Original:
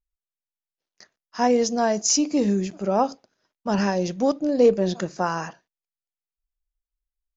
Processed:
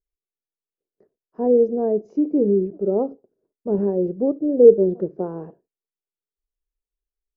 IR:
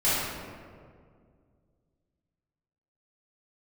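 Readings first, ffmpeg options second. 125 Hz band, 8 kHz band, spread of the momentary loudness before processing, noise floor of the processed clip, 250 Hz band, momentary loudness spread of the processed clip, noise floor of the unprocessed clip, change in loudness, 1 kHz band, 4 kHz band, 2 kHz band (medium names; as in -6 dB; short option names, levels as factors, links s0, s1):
-1.0 dB, no reading, 8 LU, under -85 dBFS, +1.5 dB, 16 LU, under -85 dBFS, +3.0 dB, -11.0 dB, under -40 dB, under -25 dB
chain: -af "lowpass=f=420:t=q:w=4.9,volume=0.708"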